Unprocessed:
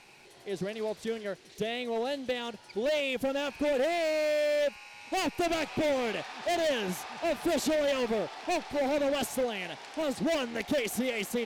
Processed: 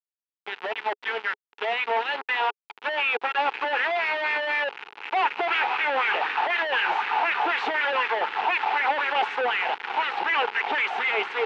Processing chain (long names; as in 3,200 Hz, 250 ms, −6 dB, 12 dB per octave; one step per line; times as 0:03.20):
auto-filter high-pass sine 4 Hz 600–1,900 Hz
log-companded quantiser 2 bits
loudspeaker in its box 390–3,000 Hz, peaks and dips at 420 Hz +7 dB, 610 Hz −10 dB, 870 Hz +9 dB, 1,400 Hz +4 dB, 2,700 Hz +3 dB
level +2.5 dB